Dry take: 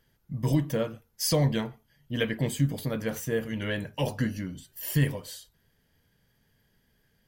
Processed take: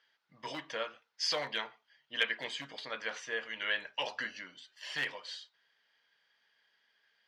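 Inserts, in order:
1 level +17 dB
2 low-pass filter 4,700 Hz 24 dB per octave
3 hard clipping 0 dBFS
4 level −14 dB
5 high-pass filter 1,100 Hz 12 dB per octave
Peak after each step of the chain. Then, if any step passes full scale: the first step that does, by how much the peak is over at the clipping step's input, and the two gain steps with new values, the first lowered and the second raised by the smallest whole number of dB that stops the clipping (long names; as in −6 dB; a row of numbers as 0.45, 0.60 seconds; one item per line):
+4.0, +4.0, 0.0, −14.0, −14.5 dBFS
step 1, 4.0 dB
step 1 +13 dB, step 4 −10 dB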